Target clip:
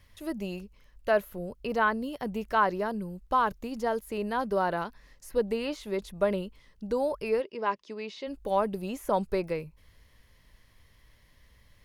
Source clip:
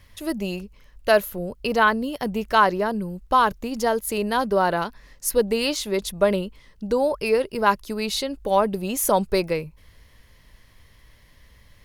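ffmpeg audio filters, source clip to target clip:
-filter_complex "[0:a]asplit=3[a][b][c];[a]afade=t=out:st=7.4:d=0.02[d];[b]highpass=300,equalizer=f=740:t=q:w=4:g=-7,equalizer=f=1.4k:t=q:w=4:g=-8,equalizer=f=4.2k:t=q:w=4:g=-7,lowpass=f=5.4k:w=0.5412,lowpass=f=5.4k:w=1.3066,afade=t=in:st=7.4:d=0.02,afade=t=out:st=8.26:d=0.02[e];[c]afade=t=in:st=8.26:d=0.02[f];[d][e][f]amix=inputs=3:normalize=0,acrossover=split=2500[g][h];[h]acompressor=threshold=-40dB:ratio=4:attack=1:release=60[i];[g][i]amix=inputs=2:normalize=0,volume=-7dB"

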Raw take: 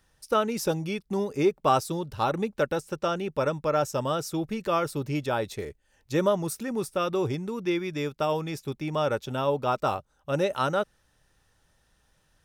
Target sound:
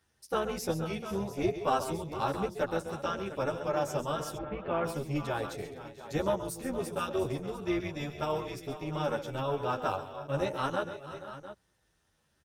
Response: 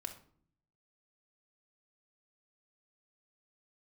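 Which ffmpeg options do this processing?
-filter_complex "[0:a]highpass=f=47:w=0.5412,highpass=f=47:w=1.3066,asplit=2[a][b];[b]aecho=0:1:123|135|137|468|511|699:0.133|0.237|0.119|0.188|0.119|0.2[c];[a][c]amix=inputs=2:normalize=0,tremolo=f=280:d=0.667,asplit=3[d][e][f];[d]afade=t=out:st=4.36:d=0.02[g];[e]lowpass=f=2.7k:w=0.5412,lowpass=f=2.7k:w=1.3066,afade=t=in:st=4.36:d=0.02,afade=t=out:st=4.84:d=0.02[h];[f]afade=t=in:st=4.84:d=0.02[i];[g][h][i]amix=inputs=3:normalize=0,asplit=2[j][k];[k]adelay=10.4,afreqshift=-0.98[l];[j][l]amix=inputs=2:normalize=1"

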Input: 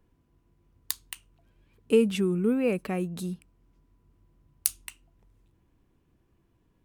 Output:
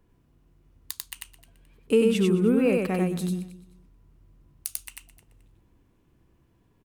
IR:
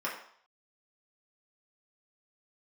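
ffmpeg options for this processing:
-filter_complex "[0:a]asplit=2[a][b];[b]aecho=0:1:94:0.708[c];[a][c]amix=inputs=2:normalize=0,alimiter=limit=-13dB:level=0:latency=1:release=393,asplit=2[d][e];[e]aecho=0:1:215|430:0.126|0.0352[f];[d][f]amix=inputs=2:normalize=0,volume=2.5dB"

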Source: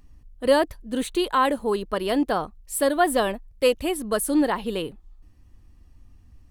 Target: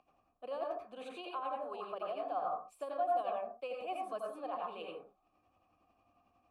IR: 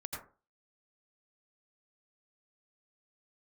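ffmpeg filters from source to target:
-filter_complex "[0:a]tremolo=f=11:d=0.56,areverse,acompressor=threshold=-30dB:ratio=6,areverse[a];[1:a]atrim=start_sample=2205,afade=t=out:st=0.28:d=0.01,atrim=end_sample=12789[b];[a][b]afir=irnorm=-1:irlink=0,acrossover=split=140|470[c][d][e];[c]acompressor=threshold=-57dB:ratio=4[f];[d]acompressor=threshold=-46dB:ratio=4[g];[e]acompressor=threshold=-42dB:ratio=4[h];[f][g][h]amix=inputs=3:normalize=0,asplit=3[i][j][k];[i]bandpass=f=730:t=q:w=8,volume=0dB[l];[j]bandpass=f=1.09k:t=q:w=8,volume=-6dB[m];[k]bandpass=f=2.44k:t=q:w=8,volume=-9dB[n];[l][m][n]amix=inputs=3:normalize=0,volume=12.5dB"

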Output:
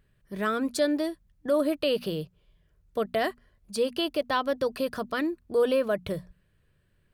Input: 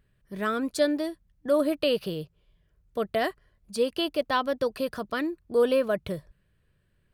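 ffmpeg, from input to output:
-filter_complex "[0:a]bandreject=f=60:t=h:w=6,bandreject=f=120:t=h:w=6,bandreject=f=180:t=h:w=6,bandreject=f=240:t=h:w=6,asplit=2[a][b];[b]alimiter=limit=-21.5dB:level=0:latency=1:release=116,volume=1dB[c];[a][c]amix=inputs=2:normalize=0,volume=-5dB"

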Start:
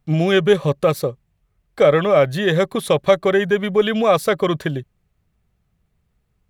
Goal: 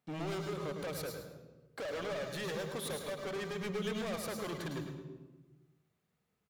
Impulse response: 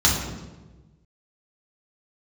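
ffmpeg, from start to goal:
-filter_complex "[0:a]highpass=260,acompressor=threshold=-21dB:ratio=4,volume=30.5dB,asoftclip=hard,volume=-30.5dB,aecho=1:1:106|212|318:0.355|0.0816|0.0188,asplit=2[a][b];[1:a]atrim=start_sample=2205,highshelf=f=11k:g=11,adelay=103[c];[b][c]afir=irnorm=-1:irlink=0,volume=-24.5dB[d];[a][d]amix=inputs=2:normalize=0,volume=-7.5dB"

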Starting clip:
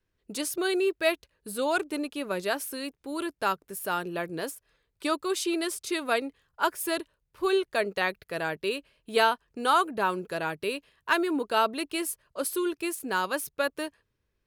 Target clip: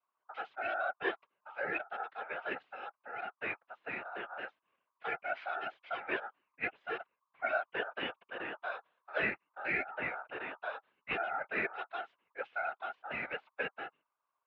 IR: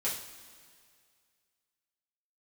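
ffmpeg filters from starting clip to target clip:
-af "aeval=exprs='val(0)*sin(2*PI*1300*n/s)':c=same,afftfilt=real='hypot(re,im)*cos(2*PI*random(0))':imag='hypot(re,im)*sin(2*PI*random(1))':win_size=512:overlap=0.75,highpass=f=510:t=q:w=0.5412,highpass=f=510:t=q:w=1.307,lowpass=f=3.1k:t=q:w=0.5176,lowpass=f=3.1k:t=q:w=0.7071,lowpass=f=3.1k:t=q:w=1.932,afreqshift=-230"

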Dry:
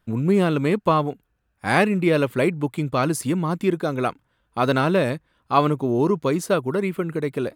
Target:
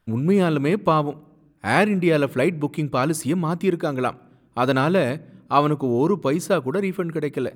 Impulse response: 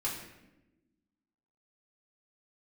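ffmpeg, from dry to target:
-filter_complex "[0:a]asplit=2[a][b];[b]lowshelf=f=170:g=12[c];[1:a]atrim=start_sample=2205,lowpass=2.9k[d];[c][d]afir=irnorm=-1:irlink=0,volume=-27dB[e];[a][e]amix=inputs=2:normalize=0"

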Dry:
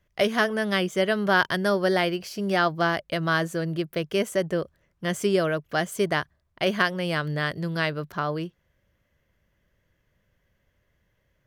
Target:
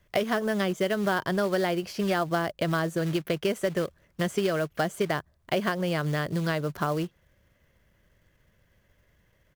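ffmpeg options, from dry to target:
-filter_complex "[0:a]atempo=1.2,acrusher=bits=4:mode=log:mix=0:aa=0.000001,acrossover=split=1100|4000[a][b][c];[a]acompressor=threshold=-30dB:ratio=4[d];[b]acompressor=threshold=-41dB:ratio=4[e];[c]acompressor=threshold=-50dB:ratio=4[f];[d][e][f]amix=inputs=3:normalize=0,volume=5dB"

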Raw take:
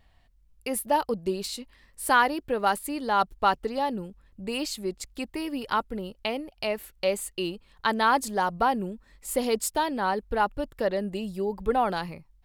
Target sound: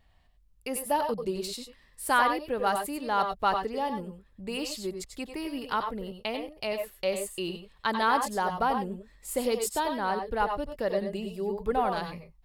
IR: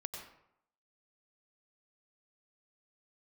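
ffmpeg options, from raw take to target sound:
-filter_complex "[0:a]asettb=1/sr,asplit=3[a][b][c];[a]atrim=end=3.654[d];[b]atrim=start=3.65:end=4.06,asetpts=PTS-STARTPTS,afade=t=in:d=0.004:c=qsin,afade=t=out:st=0.406:d=0.004:c=qsin,bandreject=f=4k:w=7.8[e];[c]atrim=start=4.056[f];[d][e]acrossfade=d=0.004:c1=hsin:c2=qsin[g];[g][f]acrossfade=d=0.004:c1=qsin:c2=hsin[h];[1:a]atrim=start_sample=2205,afade=t=out:st=0.16:d=0.01,atrim=end_sample=7497[i];[h][i]afir=irnorm=-1:irlink=0"

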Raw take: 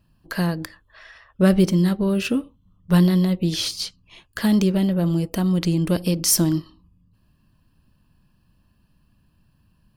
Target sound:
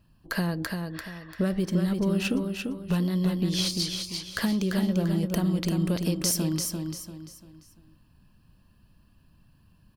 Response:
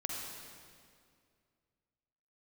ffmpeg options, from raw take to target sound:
-af "acompressor=threshold=-24dB:ratio=6,aecho=1:1:343|686|1029|1372:0.562|0.197|0.0689|0.0241"

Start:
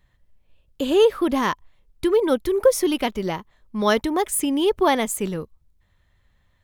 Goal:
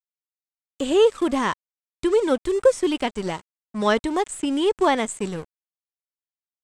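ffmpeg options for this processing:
-filter_complex "[0:a]aeval=exprs='sgn(val(0))*max(abs(val(0))-0.0141,0)':c=same,acrossover=split=3700[a][b];[b]acompressor=threshold=-44dB:ratio=4:attack=1:release=60[c];[a][c]amix=inputs=2:normalize=0,lowpass=f=8k:t=q:w=7.5"

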